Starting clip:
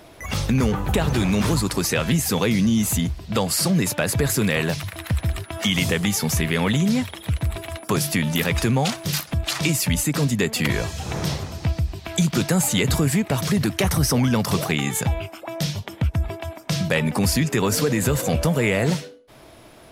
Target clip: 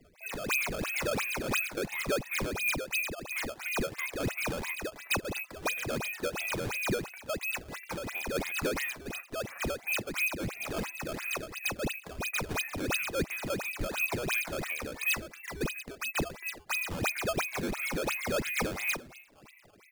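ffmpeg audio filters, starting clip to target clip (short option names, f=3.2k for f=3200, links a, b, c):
-filter_complex "[0:a]lowpass=f=2.5k:t=q:w=0.5098,lowpass=f=2.5k:t=q:w=0.6013,lowpass=f=2.5k:t=q:w=0.9,lowpass=f=2.5k:t=q:w=2.563,afreqshift=-2900,aresample=8000,asoftclip=type=tanh:threshold=-19.5dB,aresample=44100,afreqshift=-250,afftfilt=real='re*gte(hypot(re,im),0.0141)':imag='im*gte(hypot(re,im),0.0141)':win_size=1024:overlap=0.75,asplit=4[a][b][c][d];[b]adelay=269,afreqshift=93,volume=-23.5dB[e];[c]adelay=538,afreqshift=186,volume=-30.4dB[f];[d]adelay=807,afreqshift=279,volume=-37.4dB[g];[a][e][f][g]amix=inputs=4:normalize=0,aphaser=in_gain=1:out_gain=1:delay=1.9:decay=0.46:speed=0.37:type=triangular,aderivative,acrusher=samples=13:mix=1:aa=0.000001:lfo=1:lforange=20.8:lforate=2.9"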